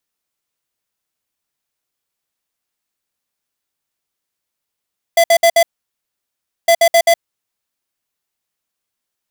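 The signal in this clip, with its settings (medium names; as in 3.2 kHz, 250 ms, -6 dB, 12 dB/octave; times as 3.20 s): beep pattern square 674 Hz, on 0.07 s, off 0.06 s, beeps 4, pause 1.05 s, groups 2, -9.5 dBFS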